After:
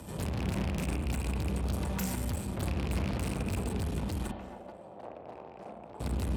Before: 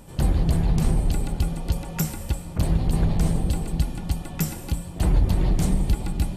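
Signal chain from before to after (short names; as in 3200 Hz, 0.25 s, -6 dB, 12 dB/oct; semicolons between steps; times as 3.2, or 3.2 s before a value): rattling part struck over -21 dBFS, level -22 dBFS; tube stage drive 36 dB, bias 0.6; 4.31–6 band-pass 640 Hz, Q 2.2; frequency shift +30 Hz; reverb RT60 1.2 s, pre-delay 32 ms, DRR 5.5 dB; gain +4 dB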